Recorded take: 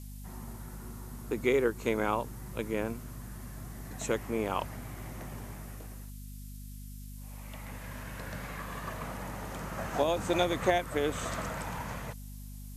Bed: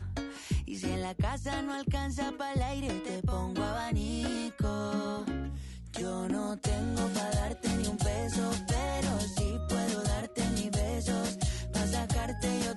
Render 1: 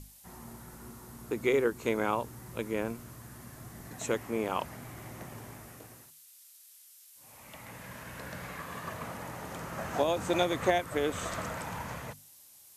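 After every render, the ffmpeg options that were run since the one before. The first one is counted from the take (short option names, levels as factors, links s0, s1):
-af "bandreject=f=50:t=h:w=6,bandreject=f=100:t=h:w=6,bandreject=f=150:t=h:w=6,bandreject=f=200:t=h:w=6,bandreject=f=250:t=h:w=6"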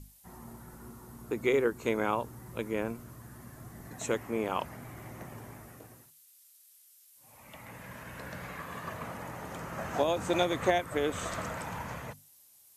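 -af "afftdn=nr=6:nf=-56"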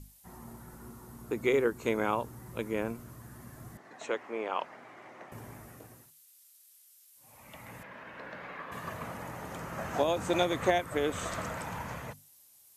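-filter_complex "[0:a]asettb=1/sr,asplit=3[s0][s1][s2];[s0]atrim=end=3.774[s3];[s1]atrim=start=3.77:end=5.32,asetpts=PTS-STARTPTS,afade=t=in:d=0.004:c=qsin,afade=t=out:st=1.546:d=0.004:c=qsin,highpass=420,lowpass=3900[s4];[s2]atrim=start=5.316[s5];[s3][s4]acrossfade=d=0.004:c1=hsin:c2=qsin[s6];[s6][s5]acrossfade=d=0.004:c1=qsin:c2=hsin,asettb=1/sr,asplit=3[s7][s8][s9];[s7]atrim=end=7.834[s10];[s8]atrim=start=7.83:end=8.72,asetpts=PTS-STARTPTS,afade=t=in:d=0.004:c=qsin,afade=t=out:st=0.886:d=0.004:c=qsin,acrossover=split=220 4100:gain=0.158 1 0.0708[s11][s12][s13];[s11][s12][s13]amix=inputs=3:normalize=0[s14];[s9]atrim=start=8.716[s15];[s10][s14]acrossfade=d=0.004:c1=hsin:c2=qsin[s16];[s16][s15]acrossfade=d=0.004:c1=qsin:c2=hsin"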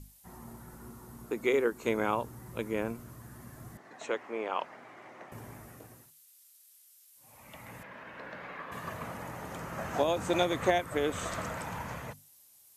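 -filter_complex "[0:a]asettb=1/sr,asplit=3[s0][s1][s2];[s0]atrim=end=1.264[s3];[s1]atrim=start=1.26:end=1.87,asetpts=PTS-STARTPTS,afade=t=in:d=0.004:c=qsin,afade=t=out:st=0.606:d=0.004:c=qsin,equalizer=f=97:w=1.5:g=-14.5[s4];[s2]atrim=start=1.866[s5];[s3][s4]acrossfade=d=0.004:c1=hsin:c2=qsin[s6];[s6][s5]acrossfade=d=0.004:c1=qsin:c2=hsin"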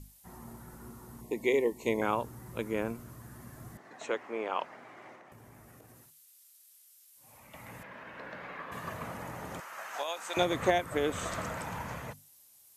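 -filter_complex "[0:a]asettb=1/sr,asplit=3[s0][s1][s2];[s0]atrim=end=1.214[s3];[s1]atrim=start=1.21:end=2.02,asetpts=PTS-STARTPTS,afade=t=in:d=0.004:c=qsin,afade=t=out:st=0.806:d=0.004:c=qsin,asuperstop=centerf=1400:order=20:qfactor=2[s4];[s2]atrim=start=2.016[s5];[s3][s4]acrossfade=d=0.004:c1=hsin:c2=qsin[s6];[s6][s5]acrossfade=d=0.004:c1=qsin:c2=hsin,asettb=1/sr,asplit=3[s7][s8][s9];[s7]atrim=end=5.154[s10];[s8]atrim=start=5.15:end=7.54,asetpts=PTS-STARTPTS,afade=t=in:d=0.004:c=qsin,afade=t=out:st=2.386:d=0.004:c=qsin,acompressor=threshold=0.00282:ratio=5:attack=3.2:release=140:knee=1:detection=peak[s11];[s9]atrim=start=7.536[s12];[s10][s11]acrossfade=d=0.004:c1=hsin:c2=qsin[s13];[s13][s12]acrossfade=d=0.004:c1=qsin:c2=hsin,asettb=1/sr,asplit=3[s14][s15][s16];[s14]atrim=end=9.604[s17];[s15]atrim=start=9.6:end=10.37,asetpts=PTS-STARTPTS,afade=t=in:d=0.004:c=qsin,afade=t=out:st=0.766:d=0.004:c=qsin,highpass=1000[s18];[s16]atrim=start=10.366[s19];[s17][s18]acrossfade=d=0.004:c1=hsin:c2=qsin[s20];[s20][s19]acrossfade=d=0.004:c1=qsin:c2=hsin"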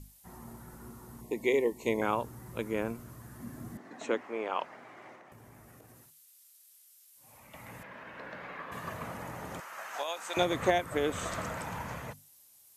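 -filter_complex "[0:a]asettb=1/sr,asplit=3[s0][s1][s2];[s0]atrim=end=3.404[s3];[s1]atrim=start=3.4:end=4.21,asetpts=PTS-STARTPTS,afade=t=in:d=0.004:c=qsin,afade=t=out:st=0.806:d=0.004:c=qsin,equalizer=f=250:w=1.5:g=10.5[s4];[s2]atrim=start=4.206[s5];[s3][s4]acrossfade=d=0.004:c1=hsin:c2=qsin[s6];[s6][s5]acrossfade=d=0.004:c1=qsin:c2=hsin"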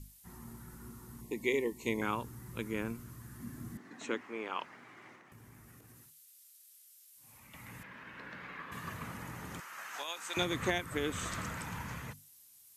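-af "equalizer=f=630:w=1.3:g=-12"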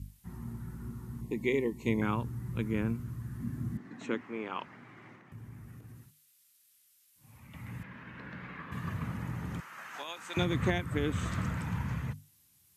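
-af "highpass=60,bass=f=250:g=12,treble=f=4000:g=-7"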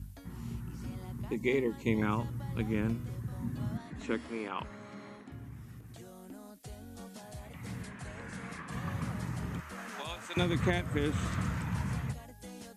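-filter_complex "[1:a]volume=0.158[s0];[0:a][s0]amix=inputs=2:normalize=0"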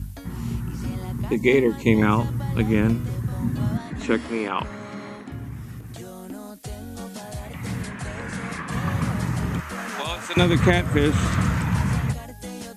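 -af "volume=3.98"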